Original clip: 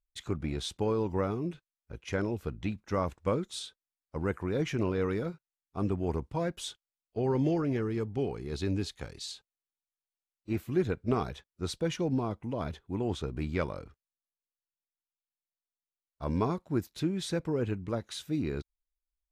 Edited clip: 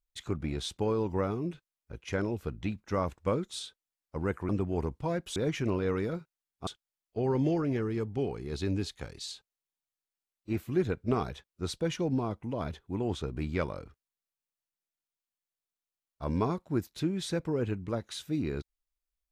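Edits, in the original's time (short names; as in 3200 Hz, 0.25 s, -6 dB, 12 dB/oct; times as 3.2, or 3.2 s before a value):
5.8–6.67 move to 4.49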